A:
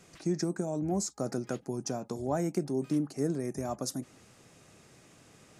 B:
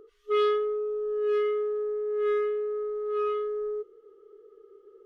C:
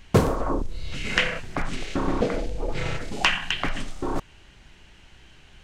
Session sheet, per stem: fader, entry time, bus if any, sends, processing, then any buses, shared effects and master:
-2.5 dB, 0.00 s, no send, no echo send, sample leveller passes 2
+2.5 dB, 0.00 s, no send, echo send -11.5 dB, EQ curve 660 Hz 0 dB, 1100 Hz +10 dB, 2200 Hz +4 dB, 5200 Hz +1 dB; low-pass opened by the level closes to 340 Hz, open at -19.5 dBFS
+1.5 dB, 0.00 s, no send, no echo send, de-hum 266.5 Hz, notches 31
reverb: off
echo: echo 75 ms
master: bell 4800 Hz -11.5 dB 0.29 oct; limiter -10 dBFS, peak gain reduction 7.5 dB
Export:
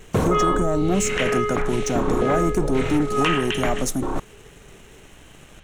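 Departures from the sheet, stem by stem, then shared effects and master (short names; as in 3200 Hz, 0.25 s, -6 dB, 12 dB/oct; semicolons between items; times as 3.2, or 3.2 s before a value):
stem A -2.5 dB -> +4.5 dB; stem C: missing de-hum 266.5 Hz, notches 31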